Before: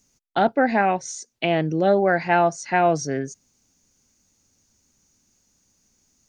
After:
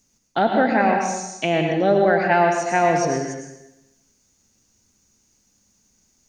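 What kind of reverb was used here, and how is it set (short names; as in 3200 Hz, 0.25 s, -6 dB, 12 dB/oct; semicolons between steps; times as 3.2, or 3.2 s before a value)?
plate-style reverb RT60 0.92 s, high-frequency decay 0.95×, pre-delay 90 ms, DRR 2 dB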